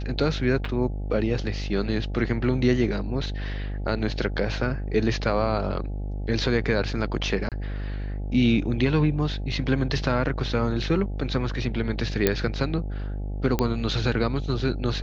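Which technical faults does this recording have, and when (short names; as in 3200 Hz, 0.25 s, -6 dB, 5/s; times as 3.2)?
buzz 50 Hz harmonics 17 -30 dBFS
0.65 gap 3.9 ms
7.49–7.52 gap 27 ms
12.27 pop -5 dBFS
13.59 pop -9 dBFS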